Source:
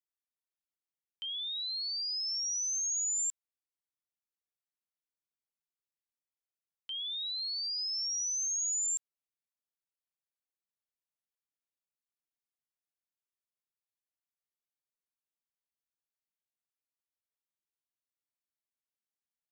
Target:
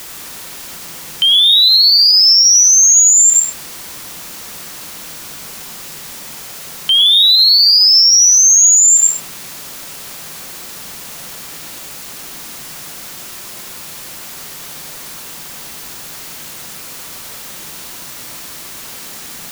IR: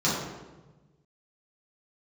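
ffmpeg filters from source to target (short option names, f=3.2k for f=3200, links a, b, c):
-filter_complex "[0:a]aeval=exprs='val(0)+0.5*0.00447*sgn(val(0))':c=same,asplit=2[a][b];[1:a]atrim=start_sample=2205,afade=t=out:st=0.19:d=0.01,atrim=end_sample=8820,adelay=91[c];[b][c]afir=irnorm=-1:irlink=0,volume=-17.5dB[d];[a][d]amix=inputs=2:normalize=0,alimiter=level_in=27.5dB:limit=-1dB:release=50:level=0:latency=1,volume=-1dB"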